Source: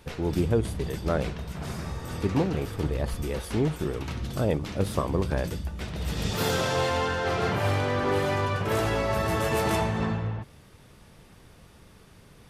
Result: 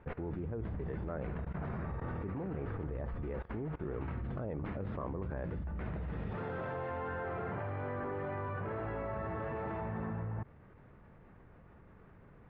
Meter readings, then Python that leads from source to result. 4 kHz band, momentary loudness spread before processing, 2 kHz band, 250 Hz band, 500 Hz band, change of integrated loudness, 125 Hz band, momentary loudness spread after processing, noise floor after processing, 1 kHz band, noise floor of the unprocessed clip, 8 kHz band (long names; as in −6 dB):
below −30 dB, 8 LU, −13.5 dB, −11.0 dB, −12.0 dB, −11.5 dB, −10.5 dB, 20 LU, −58 dBFS, −11.5 dB, −53 dBFS, below −40 dB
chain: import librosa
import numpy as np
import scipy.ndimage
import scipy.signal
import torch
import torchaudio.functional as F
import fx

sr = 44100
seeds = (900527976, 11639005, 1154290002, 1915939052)

y = fx.level_steps(x, sr, step_db=19)
y = scipy.signal.sosfilt(scipy.signal.butter(4, 1900.0, 'lowpass', fs=sr, output='sos'), y)